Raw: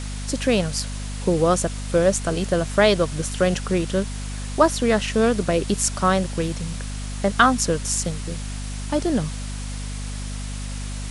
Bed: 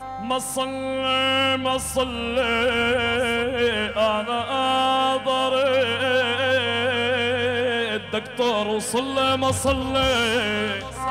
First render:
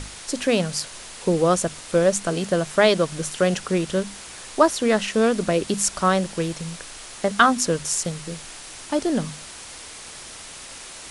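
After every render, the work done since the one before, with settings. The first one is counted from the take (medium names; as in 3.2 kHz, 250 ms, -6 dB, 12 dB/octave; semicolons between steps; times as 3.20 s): hum notches 50/100/150/200/250 Hz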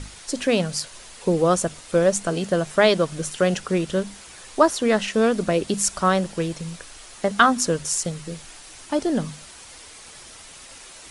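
noise reduction 6 dB, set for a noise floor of -40 dBFS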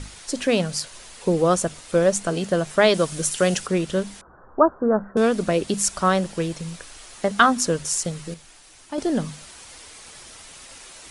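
2.94–3.67 s: treble shelf 5.1 kHz +10.5 dB; 4.21–5.17 s: steep low-pass 1.5 kHz 72 dB/octave; 8.34–8.98 s: gain -6.5 dB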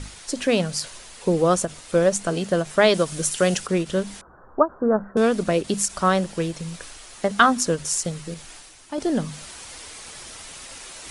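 reverse; upward compressor, threshold -33 dBFS; reverse; endings held to a fixed fall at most 370 dB/s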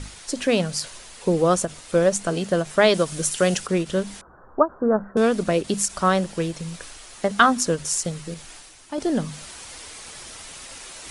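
no audible change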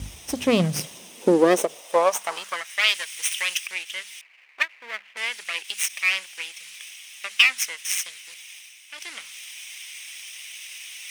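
comb filter that takes the minimum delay 0.35 ms; high-pass sweep 64 Hz -> 2.2 kHz, 0.20–2.84 s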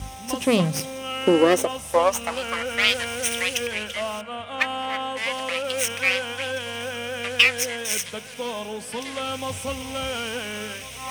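add bed -9 dB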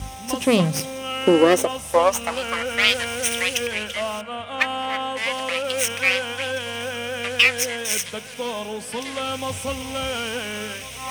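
trim +2 dB; peak limiter -2 dBFS, peak gain reduction 2.5 dB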